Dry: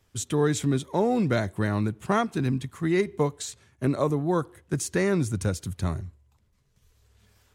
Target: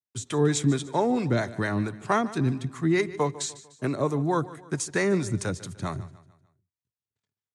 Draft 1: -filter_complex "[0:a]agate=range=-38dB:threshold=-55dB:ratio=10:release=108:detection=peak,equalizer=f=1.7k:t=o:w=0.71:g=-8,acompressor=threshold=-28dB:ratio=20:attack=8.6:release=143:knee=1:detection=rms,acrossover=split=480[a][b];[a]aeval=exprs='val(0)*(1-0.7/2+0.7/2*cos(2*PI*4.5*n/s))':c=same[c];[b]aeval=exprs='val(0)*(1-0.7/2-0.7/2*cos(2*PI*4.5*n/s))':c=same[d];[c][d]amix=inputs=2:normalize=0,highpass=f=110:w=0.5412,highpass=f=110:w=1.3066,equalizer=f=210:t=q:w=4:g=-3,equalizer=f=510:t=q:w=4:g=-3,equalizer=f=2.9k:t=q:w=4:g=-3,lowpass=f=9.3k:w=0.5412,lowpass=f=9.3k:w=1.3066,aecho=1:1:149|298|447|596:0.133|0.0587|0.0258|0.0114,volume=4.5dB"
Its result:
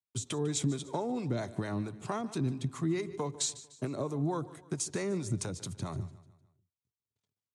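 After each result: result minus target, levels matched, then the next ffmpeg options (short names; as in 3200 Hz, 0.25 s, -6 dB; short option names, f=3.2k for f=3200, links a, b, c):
compressor: peak gain reduction +11.5 dB; 2000 Hz band -6.5 dB
-filter_complex "[0:a]agate=range=-38dB:threshold=-55dB:ratio=10:release=108:detection=peak,equalizer=f=1.7k:t=o:w=0.71:g=-8,acrossover=split=480[a][b];[a]aeval=exprs='val(0)*(1-0.7/2+0.7/2*cos(2*PI*4.5*n/s))':c=same[c];[b]aeval=exprs='val(0)*(1-0.7/2-0.7/2*cos(2*PI*4.5*n/s))':c=same[d];[c][d]amix=inputs=2:normalize=0,highpass=f=110:w=0.5412,highpass=f=110:w=1.3066,equalizer=f=210:t=q:w=4:g=-3,equalizer=f=510:t=q:w=4:g=-3,equalizer=f=2.9k:t=q:w=4:g=-3,lowpass=f=9.3k:w=0.5412,lowpass=f=9.3k:w=1.3066,aecho=1:1:149|298|447|596:0.133|0.0587|0.0258|0.0114,volume=4.5dB"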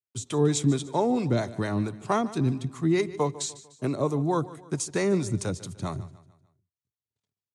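2000 Hz band -5.5 dB
-filter_complex "[0:a]agate=range=-38dB:threshold=-55dB:ratio=10:release=108:detection=peak,acrossover=split=480[a][b];[a]aeval=exprs='val(0)*(1-0.7/2+0.7/2*cos(2*PI*4.5*n/s))':c=same[c];[b]aeval=exprs='val(0)*(1-0.7/2-0.7/2*cos(2*PI*4.5*n/s))':c=same[d];[c][d]amix=inputs=2:normalize=0,highpass=f=110:w=0.5412,highpass=f=110:w=1.3066,equalizer=f=210:t=q:w=4:g=-3,equalizer=f=510:t=q:w=4:g=-3,equalizer=f=2.9k:t=q:w=4:g=-3,lowpass=f=9.3k:w=0.5412,lowpass=f=9.3k:w=1.3066,aecho=1:1:149|298|447|596:0.133|0.0587|0.0258|0.0114,volume=4.5dB"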